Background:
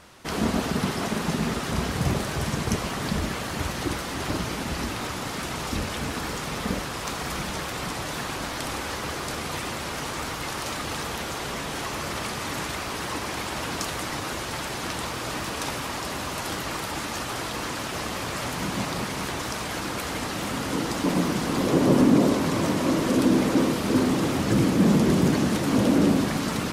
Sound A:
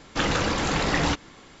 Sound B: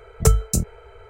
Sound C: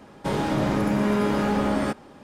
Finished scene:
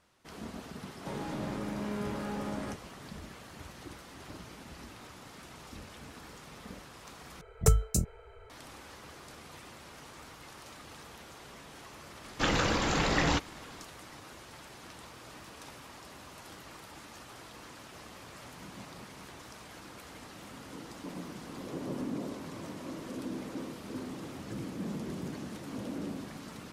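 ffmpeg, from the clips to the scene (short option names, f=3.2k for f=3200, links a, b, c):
-filter_complex "[0:a]volume=-18.5dB,asplit=2[a][b];[a]atrim=end=7.414[c];[2:a]atrim=end=1.09,asetpts=PTS-STARTPTS,volume=-7.5dB[d];[b]atrim=start=8.496[e];[3:a]atrim=end=2.23,asetpts=PTS-STARTPTS,volume=-14dB,afade=t=in:d=0.004:c=hsin,afade=t=out:st=2.226:d=0.004:c=hsin,adelay=810[f];[1:a]atrim=end=1.6,asetpts=PTS-STARTPTS,volume=-4dB,afade=t=in:d=0.004:c=hsin,afade=t=out:st=1.596:d=0.004:c=hsin,adelay=12240[g];[c][d]acrossfade=d=0.004:c1=hsin:c2=hsin[h];[h][e]acrossfade=d=0.004:c1=hsin:c2=hsin[i];[i][f][g]amix=inputs=3:normalize=0"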